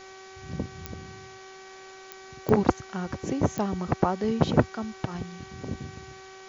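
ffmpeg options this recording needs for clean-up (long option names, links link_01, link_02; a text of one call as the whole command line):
ffmpeg -i in.wav -af "adeclick=threshold=4,bandreject=frequency=381.2:width_type=h:width=4,bandreject=frequency=762.4:width_type=h:width=4,bandreject=frequency=1143.6:width_type=h:width=4,bandreject=frequency=1524.8:width_type=h:width=4,bandreject=frequency=1906:width_type=h:width=4,bandreject=frequency=2287.2:width_type=h:width=4,afwtdn=0.004" out.wav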